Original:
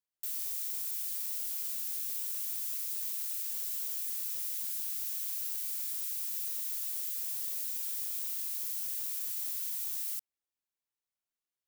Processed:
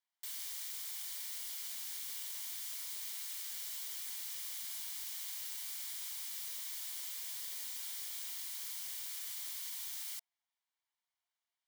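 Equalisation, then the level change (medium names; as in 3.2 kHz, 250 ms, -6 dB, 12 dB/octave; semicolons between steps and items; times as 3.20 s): rippled Chebyshev high-pass 660 Hz, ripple 6 dB; treble shelf 7.4 kHz -11 dB; band-stop 2.6 kHz, Q 5.6; +8.0 dB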